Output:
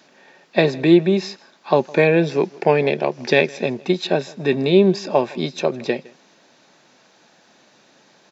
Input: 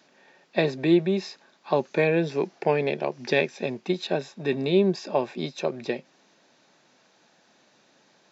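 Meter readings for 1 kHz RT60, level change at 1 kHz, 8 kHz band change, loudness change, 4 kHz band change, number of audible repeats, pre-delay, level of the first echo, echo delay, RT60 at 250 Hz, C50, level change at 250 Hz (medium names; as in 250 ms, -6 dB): no reverb, +7.0 dB, no reading, +7.0 dB, +7.0 dB, 1, no reverb, -23.5 dB, 160 ms, no reverb, no reverb, +7.0 dB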